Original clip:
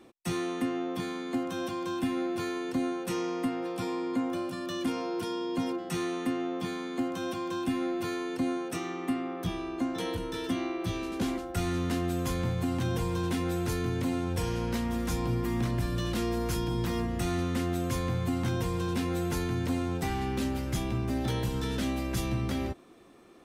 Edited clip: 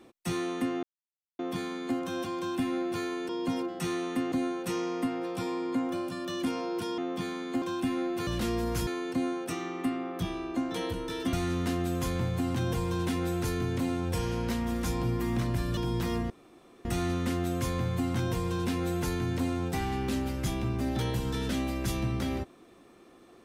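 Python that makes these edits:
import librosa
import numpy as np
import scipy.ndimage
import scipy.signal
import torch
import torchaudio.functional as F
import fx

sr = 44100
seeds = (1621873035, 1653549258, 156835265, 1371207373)

y = fx.edit(x, sr, fx.insert_silence(at_s=0.83, length_s=0.56),
    fx.move(start_s=5.39, length_s=1.03, to_s=2.73),
    fx.cut(start_s=7.06, length_s=0.4),
    fx.cut(start_s=10.57, length_s=1.0),
    fx.move(start_s=16.01, length_s=0.6, to_s=8.11),
    fx.insert_room_tone(at_s=17.14, length_s=0.55), tone=tone)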